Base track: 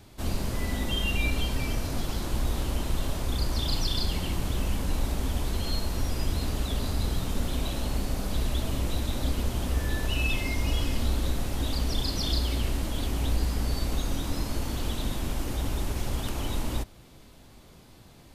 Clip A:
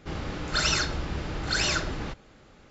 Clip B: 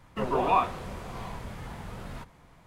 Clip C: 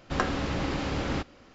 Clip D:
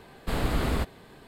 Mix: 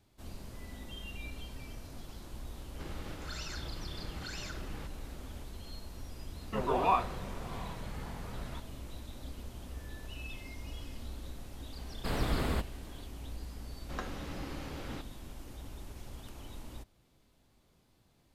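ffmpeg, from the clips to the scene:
-filter_complex "[0:a]volume=-16.5dB[a];[1:a]acompressor=threshold=-41dB:ratio=6:attack=3.2:release=140:knee=1:detection=peak[b];[2:a]lowpass=8.1k[c];[b]atrim=end=2.7,asetpts=PTS-STARTPTS,volume=-0.5dB,afade=t=in:d=0.004:c=hsin,afade=t=out:st=2.696:d=0.004:c=hsin,adelay=2740[d];[c]atrim=end=2.66,asetpts=PTS-STARTPTS,volume=-4dB,afade=t=in:d=0.004:c=hsin,afade=t=out:st=2.656:d=0.004:c=hsin,adelay=6360[e];[4:a]atrim=end=1.27,asetpts=PTS-STARTPTS,volume=-5dB,afade=t=in:d=0.004:c=hsin,afade=t=out:st=1.266:d=0.004:c=hsin,adelay=11770[f];[3:a]atrim=end=1.54,asetpts=PTS-STARTPTS,volume=-13dB,afade=t=in:d=0.004:c=hsin,afade=t=out:st=1.536:d=0.004:c=hsin,adelay=13790[g];[a][d][e][f][g]amix=inputs=5:normalize=0"

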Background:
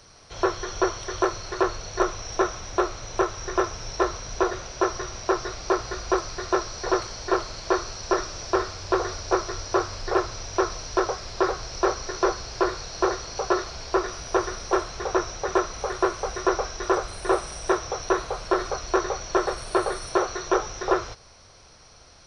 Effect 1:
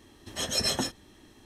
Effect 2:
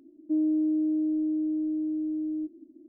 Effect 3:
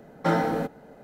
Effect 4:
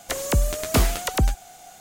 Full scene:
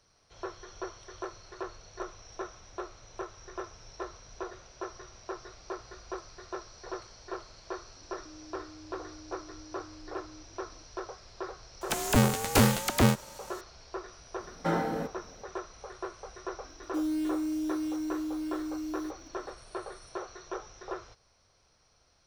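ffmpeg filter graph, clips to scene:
-filter_complex "[2:a]asplit=2[a][b];[0:a]volume=-16dB[c];[a]acompressor=threshold=-40dB:ratio=6:attack=3.2:release=140:knee=1:detection=peak[d];[4:a]aeval=exprs='val(0)*sgn(sin(2*PI*170*n/s))':c=same[e];[b]acrusher=bits=5:mode=log:mix=0:aa=0.000001[f];[d]atrim=end=2.88,asetpts=PTS-STARTPTS,volume=-10.5dB,afade=t=in:d=0.004:c=hsin,afade=t=out:st=2.876:d=0.004:c=hsin,adelay=7960[g];[e]atrim=end=1.8,asetpts=PTS-STARTPTS,volume=-3.5dB,afade=t=in:d=0.004:c=hsin,afade=t=out:st=1.796:d=0.004:c=hsin,adelay=11810[h];[3:a]atrim=end=1.03,asetpts=PTS-STARTPTS,volume=-6dB,afade=t=in:d=0.004:c=hsin,afade=t=out:st=1.026:d=0.004:c=hsin,adelay=14400[i];[f]atrim=end=2.88,asetpts=PTS-STARTPTS,volume=-5.5dB,afade=t=in:d=0.004:c=hsin,afade=t=out:st=2.876:d=0.004:c=hsin,adelay=16640[j];[c][g][h][i][j]amix=inputs=5:normalize=0"

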